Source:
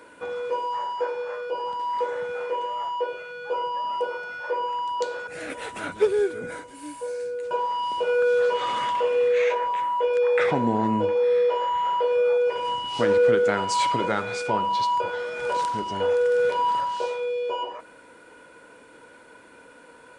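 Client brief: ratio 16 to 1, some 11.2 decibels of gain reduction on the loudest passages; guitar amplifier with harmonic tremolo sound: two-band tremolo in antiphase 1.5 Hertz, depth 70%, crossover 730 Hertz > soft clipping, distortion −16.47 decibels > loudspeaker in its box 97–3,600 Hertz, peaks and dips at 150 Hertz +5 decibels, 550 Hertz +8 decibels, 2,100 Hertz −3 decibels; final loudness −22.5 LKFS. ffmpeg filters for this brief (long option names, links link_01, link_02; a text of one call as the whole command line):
ffmpeg -i in.wav -filter_complex "[0:a]acompressor=threshold=-26dB:ratio=16,acrossover=split=730[link_01][link_02];[link_01]aeval=exprs='val(0)*(1-0.7/2+0.7/2*cos(2*PI*1.5*n/s))':channel_layout=same[link_03];[link_02]aeval=exprs='val(0)*(1-0.7/2-0.7/2*cos(2*PI*1.5*n/s))':channel_layout=same[link_04];[link_03][link_04]amix=inputs=2:normalize=0,asoftclip=threshold=-29.5dB,highpass=97,equalizer=frequency=150:width_type=q:width=4:gain=5,equalizer=frequency=550:width_type=q:width=4:gain=8,equalizer=frequency=2100:width_type=q:width=4:gain=-3,lowpass=frequency=3600:width=0.5412,lowpass=frequency=3600:width=1.3066,volume=11dB" out.wav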